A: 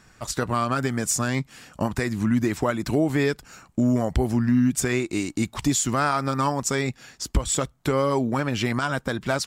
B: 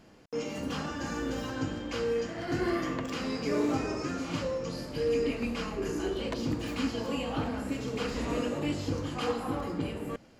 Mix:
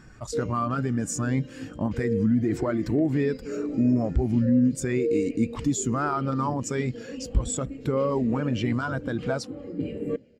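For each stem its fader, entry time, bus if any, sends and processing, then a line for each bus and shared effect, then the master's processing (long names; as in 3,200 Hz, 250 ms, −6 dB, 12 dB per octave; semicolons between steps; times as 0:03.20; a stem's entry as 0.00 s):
−5.5 dB, 0.00 s, no send, no echo send, envelope flattener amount 50%
+2.5 dB, 0.00 s, no send, echo send −22.5 dB, graphic EQ with 10 bands 125 Hz +4 dB, 250 Hz +5 dB, 500 Hz +9 dB, 1,000 Hz −7 dB, 2,000 Hz +8 dB, 4,000 Hz +5 dB, 8,000 Hz +7 dB; automatic ducking −11 dB, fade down 0.60 s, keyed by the first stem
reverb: not used
echo: single-tap delay 381 ms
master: low-shelf EQ 130 Hz +2.5 dB; every bin expanded away from the loudest bin 1.5 to 1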